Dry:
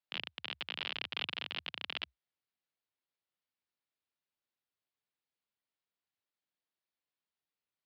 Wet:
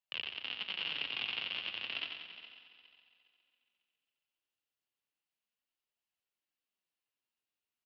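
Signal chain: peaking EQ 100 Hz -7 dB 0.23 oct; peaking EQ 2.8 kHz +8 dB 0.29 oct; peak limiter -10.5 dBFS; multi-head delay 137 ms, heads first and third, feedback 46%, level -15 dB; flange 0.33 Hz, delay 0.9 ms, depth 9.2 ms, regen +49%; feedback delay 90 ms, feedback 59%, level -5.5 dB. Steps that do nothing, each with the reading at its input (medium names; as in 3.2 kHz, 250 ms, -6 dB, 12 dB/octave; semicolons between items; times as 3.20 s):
peak limiter -10.5 dBFS: peak at its input -15.0 dBFS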